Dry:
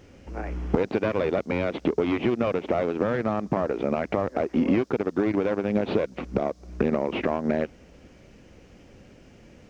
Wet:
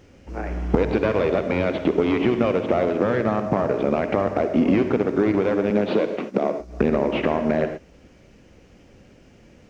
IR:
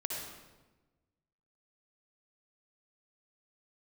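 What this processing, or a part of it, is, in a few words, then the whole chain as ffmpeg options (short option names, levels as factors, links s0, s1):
keyed gated reverb: -filter_complex "[0:a]asettb=1/sr,asplit=3[s0][s1][s2];[s0]atrim=end=5.704[s3];[s1]atrim=start=5.7:end=6.6,asetpts=PTS-STARTPTS,afade=t=in:d=0.004:c=qsin,afade=t=out:st=0.896:d=0.004:c=qsin,highpass=f=170:w=0.5412,highpass=f=170:w=1.3066[s4];[s2]atrim=start=6.596[s5];[s3][s4]acrossfade=d=0.004:c1=hsin:c2=qsin[s6];[s6][s5]acrossfade=d=0.004:c1=qsin:c2=hsin,asplit=3[s7][s8][s9];[1:a]atrim=start_sample=2205[s10];[s8][s10]afir=irnorm=-1:irlink=0[s11];[s9]apad=whole_len=427642[s12];[s11][s12]sidechaingate=range=0.0224:threshold=0.0126:ratio=16:detection=peak,volume=0.596[s13];[s7][s13]amix=inputs=2:normalize=0"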